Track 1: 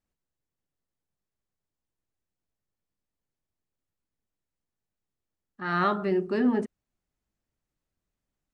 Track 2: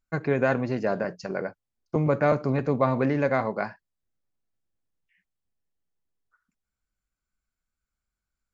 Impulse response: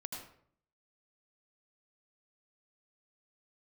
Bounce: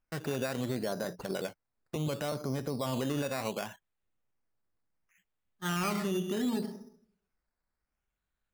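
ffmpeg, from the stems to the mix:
-filter_complex "[0:a]agate=range=-33dB:threshold=-31dB:ratio=3:detection=peak,equalizer=f=160:w=3:g=10,volume=-3.5dB,asplit=2[a][b];[b]volume=-8dB[c];[1:a]alimiter=limit=-17dB:level=0:latency=1:release=204,volume=-0.5dB[d];[2:a]atrim=start_sample=2205[e];[c][e]afir=irnorm=-1:irlink=0[f];[a][d][f]amix=inputs=3:normalize=0,acrusher=samples=11:mix=1:aa=0.000001:lfo=1:lforange=6.6:lforate=0.69,alimiter=level_in=0.5dB:limit=-24dB:level=0:latency=1:release=106,volume=-0.5dB"

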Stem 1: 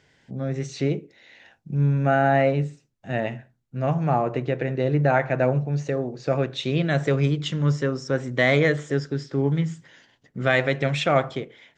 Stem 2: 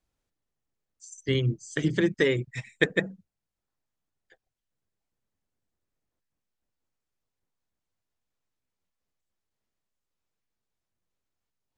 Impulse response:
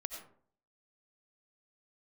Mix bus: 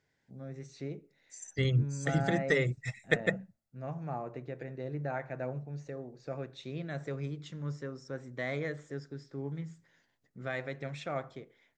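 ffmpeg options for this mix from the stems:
-filter_complex "[0:a]volume=-16.5dB,asplit=2[a][b];[b]volume=-24dB[c];[1:a]aecho=1:1:1.5:0.57,adelay=300,volume=-3.5dB[d];[2:a]atrim=start_sample=2205[e];[c][e]afir=irnorm=-1:irlink=0[f];[a][d][f]amix=inputs=3:normalize=0,equalizer=f=3k:t=o:w=0.36:g=-7.5"

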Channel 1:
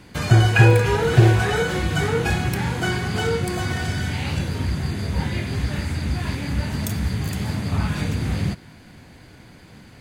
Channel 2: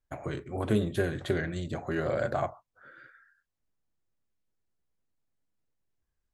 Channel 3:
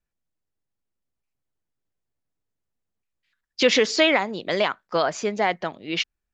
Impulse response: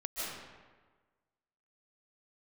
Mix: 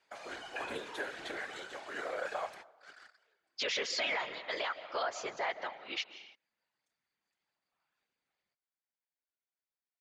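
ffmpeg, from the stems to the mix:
-filter_complex "[0:a]volume=-15.5dB[a];[1:a]highpass=f=260:p=1,acontrast=87,acrusher=bits=6:mix=0:aa=0.5,volume=-4.5dB,asplit=3[b][c][d];[c]volume=-24dB[e];[2:a]volume=-3dB,asplit=2[f][g];[g]volume=-16.5dB[h];[d]apad=whole_len=441203[i];[a][i]sidechaingate=range=-30dB:threshold=-46dB:ratio=16:detection=peak[j];[3:a]atrim=start_sample=2205[k];[e][h]amix=inputs=2:normalize=0[l];[l][k]afir=irnorm=-1:irlink=0[m];[j][b][f][m]amix=inputs=4:normalize=0,highpass=710,lowpass=7.2k,afftfilt=real='hypot(re,im)*cos(2*PI*random(0))':imag='hypot(re,im)*sin(2*PI*random(1))':win_size=512:overlap=0.75,alimiter=level_in=1dB:limit=-24dB:level=0:latency=1:release=31,volume=-1dB"

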